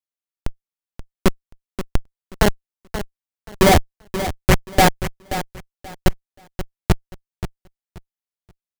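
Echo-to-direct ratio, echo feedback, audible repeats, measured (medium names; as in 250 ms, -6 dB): -11.5 dB, 23%, 2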